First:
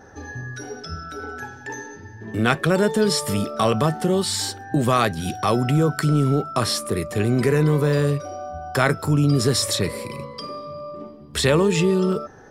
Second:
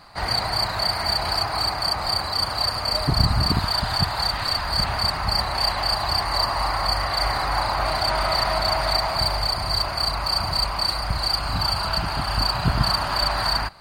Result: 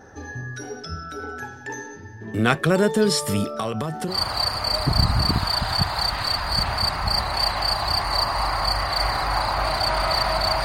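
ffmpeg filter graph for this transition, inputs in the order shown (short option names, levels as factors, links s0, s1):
-filter_complex "[0:a]asettb=1/sr,asplit=3[s0][s1][s2];[s0]atrim=end=3.594[s3];[s1]atrim=start=3.59:end=4.18,asetpts=PTS-STARTPTS,afade=t=in:d=0.004:c=qsin,afade=t=out:st=0.586:d=0.004:c=qsin,acompressor=threshold=0.0794:ratio=6:attack=3.2:release=140:knee=1:detection=peak[s4];[s2]atrim=start=4.176[s5];[s3][s4]acrossfade=d=0.004:c1=hsin:c2=qsin[s6];[s6][s5]acrossfade=d=0.004:c1=qsin:c2=hsin,apad=whole_dur=10.64,atrim=end=10.64,atrim=end=4.18,asetpts=PTS-STARTPTS[s7];[1:a]atrim=start=2.27:end=8.85,asetpts=PTS-STARTPTS[s8];[s7][s8]acrossfade=d=0.12:c1=tri:c2=tri"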